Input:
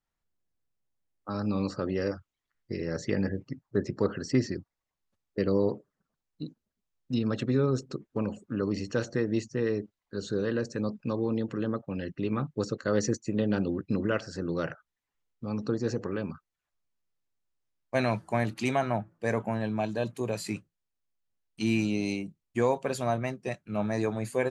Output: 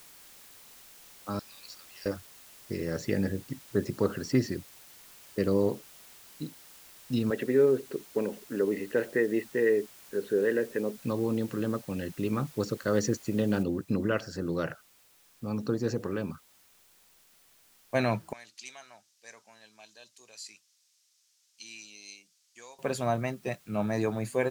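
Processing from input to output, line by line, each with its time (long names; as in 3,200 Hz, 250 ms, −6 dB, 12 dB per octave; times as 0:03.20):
0:01.39–0:02.06: flat-topped band-pass 4,800 Hz, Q 1.1
0:03.00–0:03.64: parametric band 1,100 Hz −12.5 dB 0.29 octaves
0:07.30–0:10.98: loudspeaker in its box 250–2,800 Hz, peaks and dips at 420 Hz +8 dB, 1,200 Hz −10 dB, 1,900 Hz +10 dB
0:13.63: noise floor change −53 dB −62 dB
0:18.33–0:22.79: resonant band-pass 5,700 Hz, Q 1.9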